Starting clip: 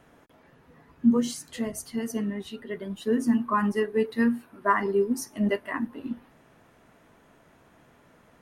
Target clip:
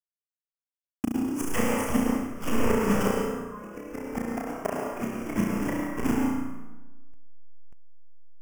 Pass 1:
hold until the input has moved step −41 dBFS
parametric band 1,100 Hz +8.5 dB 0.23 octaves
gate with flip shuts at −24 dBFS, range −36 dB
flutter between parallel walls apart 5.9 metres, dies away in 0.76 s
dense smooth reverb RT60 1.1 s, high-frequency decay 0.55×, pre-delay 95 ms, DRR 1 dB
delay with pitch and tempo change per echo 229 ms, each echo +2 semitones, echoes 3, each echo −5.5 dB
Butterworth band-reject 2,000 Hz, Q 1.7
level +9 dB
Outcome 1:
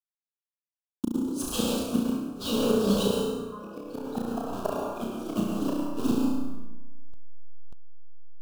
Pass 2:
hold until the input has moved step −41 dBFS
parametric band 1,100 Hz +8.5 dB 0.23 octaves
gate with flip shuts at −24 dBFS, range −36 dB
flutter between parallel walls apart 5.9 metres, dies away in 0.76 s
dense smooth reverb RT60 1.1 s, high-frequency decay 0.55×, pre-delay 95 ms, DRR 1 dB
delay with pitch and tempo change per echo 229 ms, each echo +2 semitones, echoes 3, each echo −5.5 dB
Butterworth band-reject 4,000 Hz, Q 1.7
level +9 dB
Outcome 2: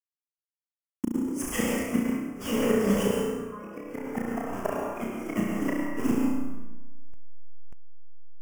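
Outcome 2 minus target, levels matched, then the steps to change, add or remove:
hold until the input has moved: distortion −7 dB
change: hold until the input has moved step −33 dBFS

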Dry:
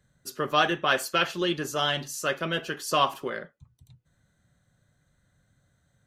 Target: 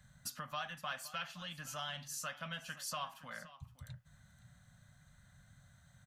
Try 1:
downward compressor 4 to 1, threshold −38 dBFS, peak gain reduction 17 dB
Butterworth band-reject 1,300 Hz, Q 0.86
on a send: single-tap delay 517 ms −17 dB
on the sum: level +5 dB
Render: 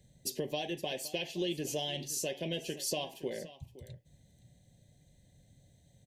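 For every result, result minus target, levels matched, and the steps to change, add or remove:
500 Hz band +8.0 dB; downward compressor: peak gain reduction −7 dB
change: Butterworth band-reject 380 Hz, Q 0.86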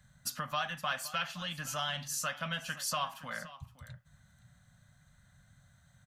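downward compressor: peak gain reduction −7 dB
change: downward compressor 4 to 1, threshold −47.5 dBFS, peak gain reduction 24.5 dB

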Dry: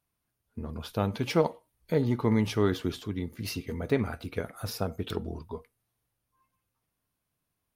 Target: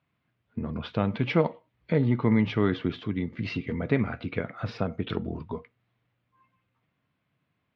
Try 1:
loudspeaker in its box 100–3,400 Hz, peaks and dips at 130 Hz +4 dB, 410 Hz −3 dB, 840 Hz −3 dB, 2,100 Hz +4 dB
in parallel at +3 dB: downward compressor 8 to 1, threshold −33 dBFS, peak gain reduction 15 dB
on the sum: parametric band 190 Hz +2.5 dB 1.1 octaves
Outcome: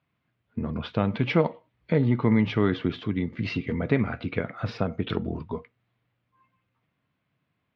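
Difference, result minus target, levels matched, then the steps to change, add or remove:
downward compressor: peak gain reduction −6 dB
change: downward compressor 8 to 1, threshold −40 dBFS, peak gain reduction 21 dB

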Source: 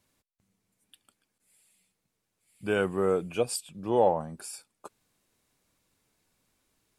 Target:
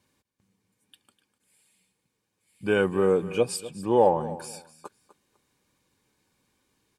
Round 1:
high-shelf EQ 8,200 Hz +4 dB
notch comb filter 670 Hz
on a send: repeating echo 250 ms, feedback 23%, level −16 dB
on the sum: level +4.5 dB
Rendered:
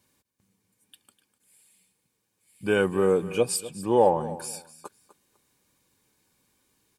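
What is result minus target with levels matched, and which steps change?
8,000 Hz band +5.5 dB
change: high-shelf EQ 8,200 Hz −6.5 dB

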